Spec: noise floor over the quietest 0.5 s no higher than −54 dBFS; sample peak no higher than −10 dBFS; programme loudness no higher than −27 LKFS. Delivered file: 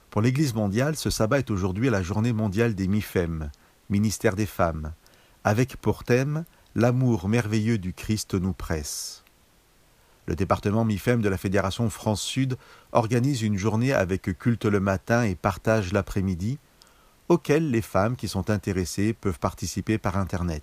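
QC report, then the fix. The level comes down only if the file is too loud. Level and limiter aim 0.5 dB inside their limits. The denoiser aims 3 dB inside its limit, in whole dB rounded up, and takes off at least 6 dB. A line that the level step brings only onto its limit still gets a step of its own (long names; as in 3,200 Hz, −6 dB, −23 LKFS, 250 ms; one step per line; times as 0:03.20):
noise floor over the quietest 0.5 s −59 dBFS: in spec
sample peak −5.0 dBFS: out of spec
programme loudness −25.5 LKFS: out of spec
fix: level −2 dB
brickwall limiter −10.5 dBFS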